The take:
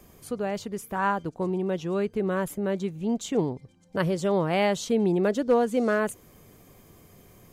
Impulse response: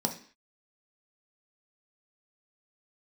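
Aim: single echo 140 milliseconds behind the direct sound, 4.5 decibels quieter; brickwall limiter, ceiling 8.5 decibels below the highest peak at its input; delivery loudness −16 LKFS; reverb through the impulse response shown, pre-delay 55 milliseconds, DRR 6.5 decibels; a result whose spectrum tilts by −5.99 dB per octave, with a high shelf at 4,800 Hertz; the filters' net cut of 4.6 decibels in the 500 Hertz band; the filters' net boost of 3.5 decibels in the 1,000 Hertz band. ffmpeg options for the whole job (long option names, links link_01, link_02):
-filter_complex "[0:a]equalizer=frequency=500:width_type=o:gain=-7.5,equalizer=frequency=1000:width_type=o:gain=6.5,highshelf=frequency=4800:gain=3.5,alimiter=limit=-18.5dB:level=0:latency=1,aecho=1:1:140:0.596,asplit=2[link_01][link_02];[1:a]atrim=start_sample=2205,adelay=55[link_03];[link_02][link_03]afir=irnorm=-1:irlink=0,volume=-13dB[link_04];[link_01][link_04]amix=inputs=2:normalize=0,volume=9dB"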